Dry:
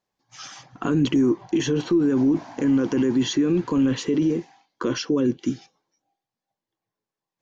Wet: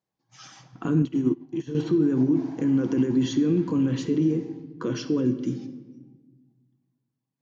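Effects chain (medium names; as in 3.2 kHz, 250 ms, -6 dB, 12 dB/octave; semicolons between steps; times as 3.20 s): high-pass 97 Hz; bass shelf 270 Hz +11 dB; simulated room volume 980 m³, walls mixed, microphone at 0.62 m; 1.02–1.75 s: upward expansion 2.5:1, over -22 dBFS; trim -8 dB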